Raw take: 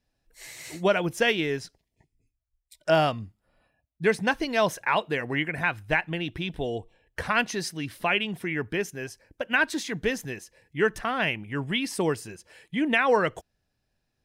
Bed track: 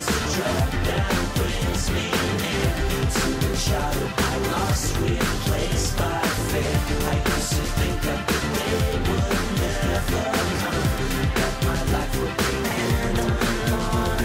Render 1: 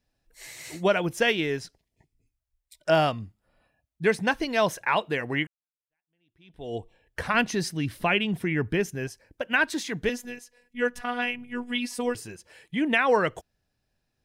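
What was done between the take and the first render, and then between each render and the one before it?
5.47–6.75 s: fade in exponential; 7.34–9.08 s: bass shelf 260 Hz +9 dB; 10.09–12.15 s: robot voice 244 Hz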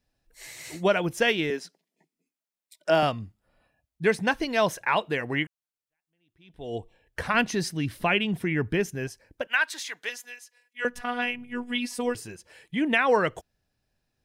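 1.50–3.03 s: elliptic high-pass 170 Hz; 9.47–10.85 s: high-pass 1 kHz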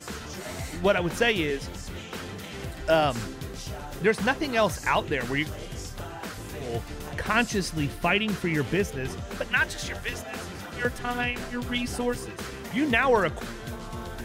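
add bed track -14 dB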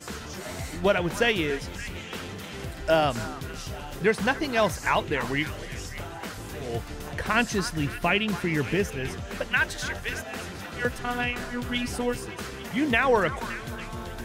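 repeats whose band climbs or falls 284 ms, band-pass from 1.2 kHz, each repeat 0.7 oct, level -10 dB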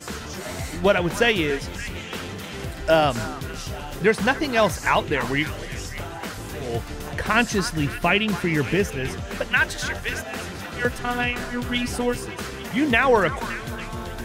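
trim +4 dB

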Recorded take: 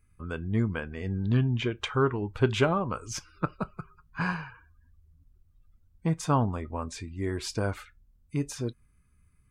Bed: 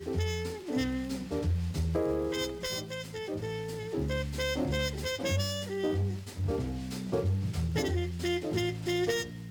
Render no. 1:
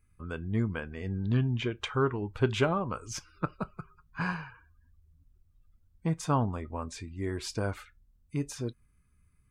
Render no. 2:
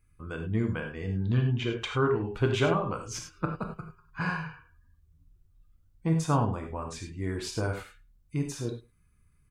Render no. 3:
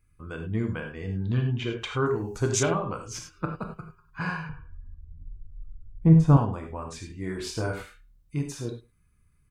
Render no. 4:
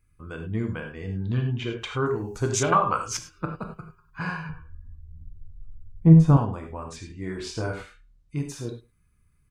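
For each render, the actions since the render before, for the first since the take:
trim -2.5 dB
echo from a far wall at 19 m, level -25 dB; gated-style reverb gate 120 ms flat, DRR 3 dB
2.06–2.63 s: resonant high shelf 4.4 kHz +13.5 dB, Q 3; 4.49–6.37 s: tilt EQ -4 dB/octave; 7.07–8.41 s: doubling 27 ms -5 dB
2.72–3.17 s: FFT filter 370 Hz 0 dB, 1.2 kHz +13 dB, 3 kHz +8 dB; 4.44–6.31 s: doubling 12 ms -5.5 dB; 6.96–8.37 s: low-pass 8 kHz

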